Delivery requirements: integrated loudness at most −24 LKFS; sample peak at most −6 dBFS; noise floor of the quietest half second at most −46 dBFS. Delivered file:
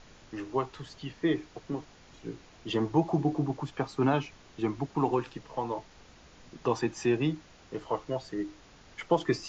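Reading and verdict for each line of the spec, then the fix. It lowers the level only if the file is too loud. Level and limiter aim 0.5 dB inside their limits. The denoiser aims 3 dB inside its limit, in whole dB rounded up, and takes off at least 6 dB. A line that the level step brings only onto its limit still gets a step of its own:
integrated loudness −32.0 LKFS: in spec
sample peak −13.5 dBFS: in spec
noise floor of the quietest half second −55 dBFS: in spec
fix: no processing needed

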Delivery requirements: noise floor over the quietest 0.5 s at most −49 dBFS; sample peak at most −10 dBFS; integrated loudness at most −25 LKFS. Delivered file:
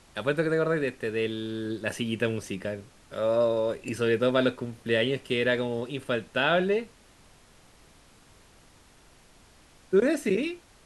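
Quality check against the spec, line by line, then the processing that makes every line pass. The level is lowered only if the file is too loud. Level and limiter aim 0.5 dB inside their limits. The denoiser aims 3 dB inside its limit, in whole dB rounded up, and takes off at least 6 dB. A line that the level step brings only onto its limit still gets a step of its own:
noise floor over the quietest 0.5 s −56 dBFS: in spec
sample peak −10.5 dBFS: in spec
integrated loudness −27.5 LKFS: in spec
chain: no processing needed

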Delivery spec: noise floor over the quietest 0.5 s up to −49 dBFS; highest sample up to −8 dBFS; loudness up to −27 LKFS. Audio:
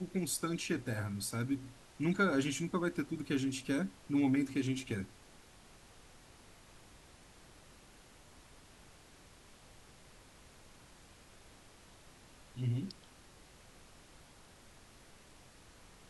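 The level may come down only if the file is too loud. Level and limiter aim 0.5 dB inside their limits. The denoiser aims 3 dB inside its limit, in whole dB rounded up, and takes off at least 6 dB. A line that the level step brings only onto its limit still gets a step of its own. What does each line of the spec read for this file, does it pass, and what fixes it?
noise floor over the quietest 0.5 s −59 dBFS: in spec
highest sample −19.0 dBFS: in spec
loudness −36.0 LKFS: in spec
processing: no processing needed

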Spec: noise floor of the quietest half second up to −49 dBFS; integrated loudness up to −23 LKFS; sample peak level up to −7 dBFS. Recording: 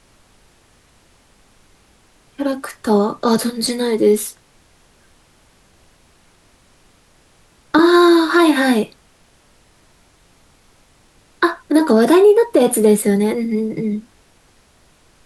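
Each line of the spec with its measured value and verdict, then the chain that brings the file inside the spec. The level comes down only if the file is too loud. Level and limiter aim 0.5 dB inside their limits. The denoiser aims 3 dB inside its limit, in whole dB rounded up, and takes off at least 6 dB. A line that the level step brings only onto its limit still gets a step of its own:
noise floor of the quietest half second −53 dBFS: in spec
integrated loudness −15.5 LKFS: out of spec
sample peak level −3.0 dBFS: out of spec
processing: level −8 dB

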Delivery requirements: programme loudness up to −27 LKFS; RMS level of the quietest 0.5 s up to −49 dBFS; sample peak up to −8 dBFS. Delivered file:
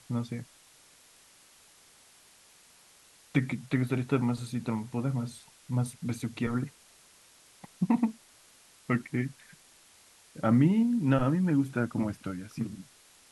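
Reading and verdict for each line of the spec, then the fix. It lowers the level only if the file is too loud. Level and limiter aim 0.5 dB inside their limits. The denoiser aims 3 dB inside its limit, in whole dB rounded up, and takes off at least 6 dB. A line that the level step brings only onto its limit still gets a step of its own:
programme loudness −30.5 LKFS: in spec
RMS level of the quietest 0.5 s −59 dBFS: in spec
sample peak −12.0 dBFS: in spec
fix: no processing needed

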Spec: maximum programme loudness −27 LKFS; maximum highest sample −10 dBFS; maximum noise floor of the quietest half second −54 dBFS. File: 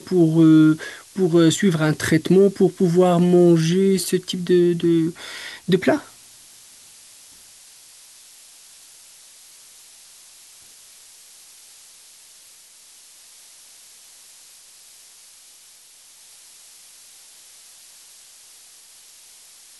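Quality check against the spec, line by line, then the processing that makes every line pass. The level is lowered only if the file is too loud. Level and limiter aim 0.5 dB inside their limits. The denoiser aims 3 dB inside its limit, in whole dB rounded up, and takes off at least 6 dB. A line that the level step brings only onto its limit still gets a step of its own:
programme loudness −17.5 LKFS: out of spec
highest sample −5.5 dBFS: out of spec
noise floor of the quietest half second −49 dBFS: out of spec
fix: level −10 dB

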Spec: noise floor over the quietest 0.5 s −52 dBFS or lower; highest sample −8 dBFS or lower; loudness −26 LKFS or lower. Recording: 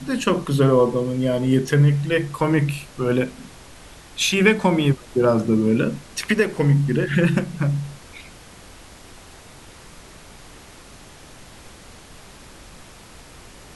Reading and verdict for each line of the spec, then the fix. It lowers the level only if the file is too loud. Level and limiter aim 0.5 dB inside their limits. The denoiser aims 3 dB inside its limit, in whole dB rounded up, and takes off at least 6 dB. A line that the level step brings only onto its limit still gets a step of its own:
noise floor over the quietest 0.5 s −44 dBFS: out of spec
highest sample −3.0 dBFS: out of spec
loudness −20.0 LKFS: out of spec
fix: broadband denoise 6 dB, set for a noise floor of −44 dBFS
level −6.5 dB

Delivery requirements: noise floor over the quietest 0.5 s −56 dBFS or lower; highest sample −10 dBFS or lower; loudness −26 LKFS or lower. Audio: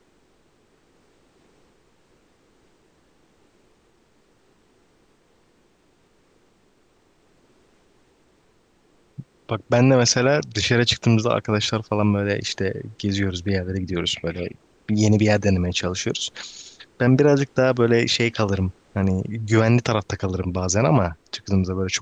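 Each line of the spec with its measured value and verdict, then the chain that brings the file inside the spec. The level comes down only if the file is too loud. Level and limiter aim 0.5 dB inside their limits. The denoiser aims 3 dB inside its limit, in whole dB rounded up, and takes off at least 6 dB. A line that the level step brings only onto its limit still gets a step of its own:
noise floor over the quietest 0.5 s −61 dBFS: in spec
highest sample −6.0 dBFS: out of spec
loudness −21.0 LKFS: out of spec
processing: level −5.5 dB

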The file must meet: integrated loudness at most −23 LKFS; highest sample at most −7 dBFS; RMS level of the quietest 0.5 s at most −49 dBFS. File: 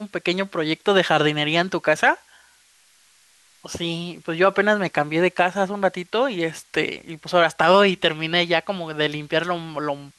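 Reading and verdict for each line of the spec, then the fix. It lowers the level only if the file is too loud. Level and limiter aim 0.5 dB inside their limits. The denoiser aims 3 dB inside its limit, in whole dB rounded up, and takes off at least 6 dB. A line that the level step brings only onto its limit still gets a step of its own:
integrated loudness −21.0 LKFS: out of spec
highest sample −4.0 dBFS: out of spec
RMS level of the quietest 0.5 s −57 dBFS: in spec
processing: level −2.5 dB
brickwall limiter −7.5 dBFS

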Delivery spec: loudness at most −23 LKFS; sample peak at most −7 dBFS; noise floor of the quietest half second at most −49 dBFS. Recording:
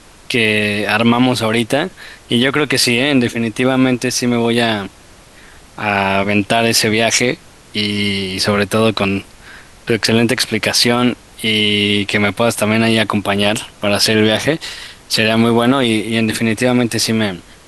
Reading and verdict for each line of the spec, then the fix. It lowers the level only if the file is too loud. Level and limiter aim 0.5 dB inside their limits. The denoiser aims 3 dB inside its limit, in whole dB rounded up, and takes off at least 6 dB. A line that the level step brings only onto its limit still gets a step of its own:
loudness −14.5 LKFS: out of spec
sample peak −1.5 dBFS: out of spec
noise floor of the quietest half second −42 dBFS: out of spec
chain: level −9 dB

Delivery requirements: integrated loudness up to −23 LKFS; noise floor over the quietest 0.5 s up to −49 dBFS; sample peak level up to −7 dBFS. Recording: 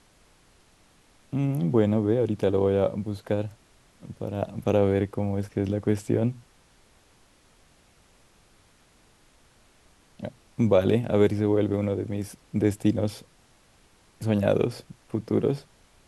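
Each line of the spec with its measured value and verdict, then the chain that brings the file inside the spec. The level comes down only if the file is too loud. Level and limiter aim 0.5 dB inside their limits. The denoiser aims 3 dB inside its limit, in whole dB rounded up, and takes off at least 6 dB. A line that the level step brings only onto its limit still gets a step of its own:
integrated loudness −26.0 LKFS: in spec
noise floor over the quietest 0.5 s −60 dBFS: in spec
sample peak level −7.5 dBFS: in spec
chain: no processing needed

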